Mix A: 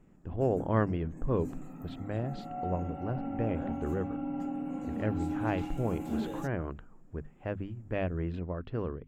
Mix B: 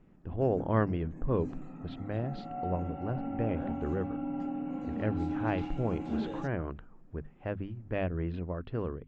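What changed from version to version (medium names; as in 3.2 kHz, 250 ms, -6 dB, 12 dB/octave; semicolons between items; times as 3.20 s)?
master: add low-pass 5.3 kHz 24 dB/octave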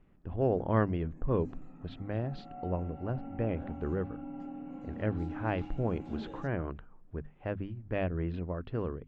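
background -7.0 dB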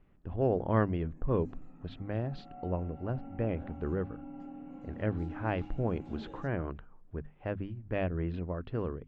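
background -3.0 dB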